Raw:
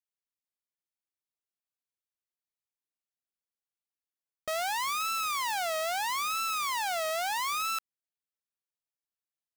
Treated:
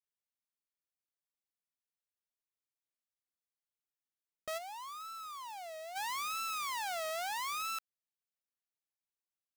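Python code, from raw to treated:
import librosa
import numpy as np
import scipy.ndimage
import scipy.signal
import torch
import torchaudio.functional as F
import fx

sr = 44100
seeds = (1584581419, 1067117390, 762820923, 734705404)

y = fx.clip_hard(x, sr, threshold_db=-38.0, at=(4.57, 5.95), fade=0.02)
y = y * 10.0 ** (-6.5 / 20.0)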